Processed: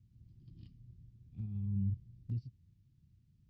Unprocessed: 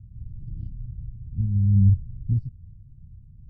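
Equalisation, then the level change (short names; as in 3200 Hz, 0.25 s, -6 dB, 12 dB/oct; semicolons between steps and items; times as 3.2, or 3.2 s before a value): air absorption 200 m; dynamic EQ 120 Hz, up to +4 dB, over -35 dBFS, Q 3.5; differentiator; +17.5 dB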